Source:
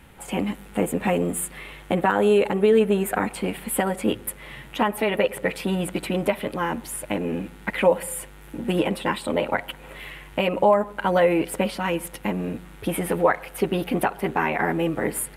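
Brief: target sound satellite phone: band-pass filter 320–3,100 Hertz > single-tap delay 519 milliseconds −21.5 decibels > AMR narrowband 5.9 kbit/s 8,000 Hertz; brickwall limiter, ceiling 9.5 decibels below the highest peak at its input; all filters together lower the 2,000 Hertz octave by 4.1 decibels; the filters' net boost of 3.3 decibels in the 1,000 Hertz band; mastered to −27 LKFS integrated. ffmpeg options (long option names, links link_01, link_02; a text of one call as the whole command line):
ffmpeg -i in.wav -af "equalizer=frequency=1000:width_type=o:gain=5.5,equalizer=frequency=2000:width_type=o:gain=-6.5,alimiter=limit=-14dB:level=0:latency=1,highpass=320,lowpass=3100,aecho=1:1:519:0.0841,volume=2dB" -ar 8000 -c:a libopencore_amrnb -b:a 5900 out.amr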